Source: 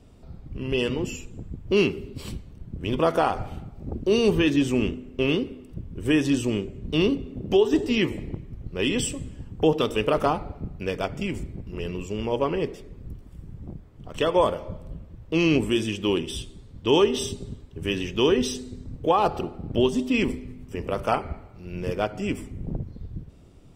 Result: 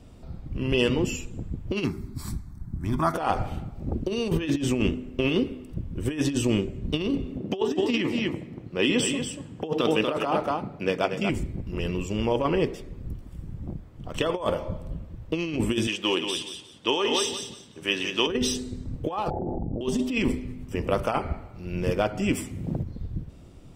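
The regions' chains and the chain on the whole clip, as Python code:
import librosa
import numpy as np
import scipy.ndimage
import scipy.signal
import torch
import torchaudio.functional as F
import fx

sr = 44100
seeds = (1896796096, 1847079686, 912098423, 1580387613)

y = fx.chain(x, sr, fx.high_shelf(hz=9000.0, db=4.5),
    fx.fixed_phaser(hz=1200.0, stages=4), at=(1.84, 3.14))
y = fx.chain(y, sr, fx.highpass(hz=170.0, slope=12),
    fx.high_shelf(hz=8700.0, db=-8.5),
    fx.echo_single(ms=237, db=-7.5), at=(7.37, 11.3))
y = fx.chain(y, sr, fx.weighting(curve='A'),
    fx.echo_feedback(ms=178, feedback_pct=23, wet_db=-7.5), at=(15.87, 18.27))
y = fx.chain(y, sr, fx.steep_lowpass(hz=860.0, slope=96),
    fx.env_flatten(amount_pct=100), at=(19.3, 19.81))
y = fx.chain(y, sr, fx.highpass(hz=80.0, slope=12),
    fx.high_shelf(hz=2300.0, db=9.0), at=(22.33, 22.83))
y = fx.notch(y, sr, hz=420.0, q=13.0)
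y = fx.over_compress(y, sr, threshold_db=-24.0, ratio=-0.5)
y = y * librosa.db_to_amplitude(1.0)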